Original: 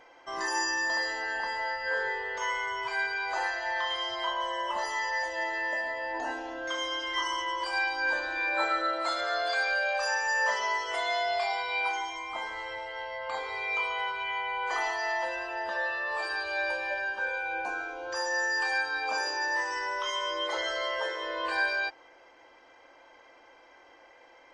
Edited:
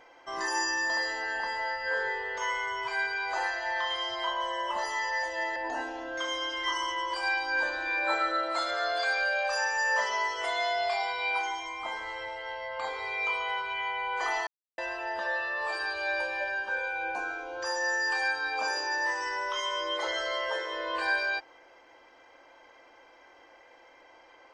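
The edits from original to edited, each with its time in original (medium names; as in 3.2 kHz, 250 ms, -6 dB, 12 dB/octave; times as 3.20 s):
5.56–6.06 s: delete
14.97–15.28 s: mute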